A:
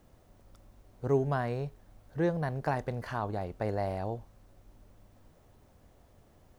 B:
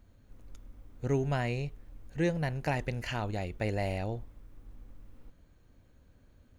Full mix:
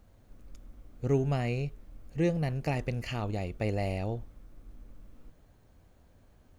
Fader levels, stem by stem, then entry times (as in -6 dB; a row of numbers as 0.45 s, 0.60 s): -5.0 dB, -1.0 dB; 0.00 s, 0.00 s